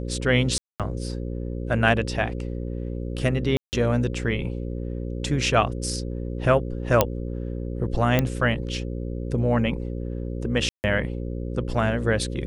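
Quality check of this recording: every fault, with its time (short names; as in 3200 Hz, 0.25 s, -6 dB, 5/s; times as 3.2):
buzz 60 Hz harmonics 9 -30 dBFS
0.58–0.8 gap 0.217 s
3.57–3.73 gap 0.159 s
7.01 pop -2 dBFS
8.19 pop -7 dBFS
10.69–10.84 gap 0.149 s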